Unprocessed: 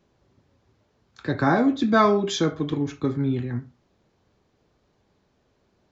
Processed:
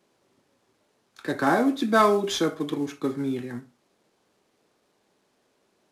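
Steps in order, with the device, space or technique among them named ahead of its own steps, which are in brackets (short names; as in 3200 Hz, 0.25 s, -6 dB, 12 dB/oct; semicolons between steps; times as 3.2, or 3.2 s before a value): early wireless headset (HPF 250 Hz 12 dB/oct; CVSD 64 kbps)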